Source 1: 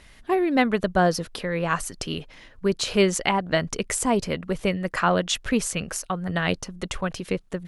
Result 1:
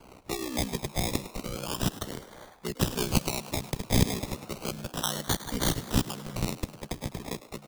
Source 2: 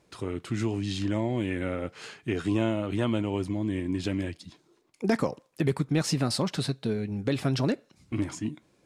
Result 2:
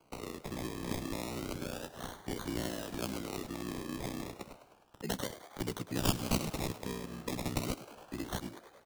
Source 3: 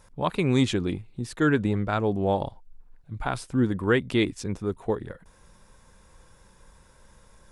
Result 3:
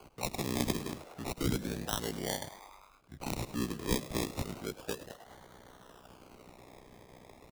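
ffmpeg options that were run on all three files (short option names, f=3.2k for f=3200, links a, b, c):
-filter_complex "[0:a]aemphasis=mode=production:type=riaa,aeval=exprs='val(0)*sin(2*PI*31*n/s)':c=same,acrusher=samples=24:mix=1:aa=0.000001:lfo=1:lforange=14.4:lforate=0.32,asplit=2[a][b];[b]asplit=6[c][d][e][f][g][h];[c]adelay=103,afreqshift=93,volume=-16dB[i];[d]adelay=206,afreqshift=186,volume=-20.2dB[j];[e]adelay=309,afreqshift=279,volume=-24.3dB[k];[f]adelay=412,afreqshift=372,volume=-28.5dB[l];[g]adelay=515,afreqshift=465,volume=-32.6dB[m];[h]adelay=618,afreqshift=558,volume=-36.8dB[n];[i][j][k][l][m][n]amix=inputs=6:normalize=0[o];[a][o]amix=inputs=2:normalize=0,acrossover=split=270|3000[p][q][r];[q]acompressor=threshold=-44dB:ratio=2[s];[p][s][r]amix=inputs=3:normalize=0"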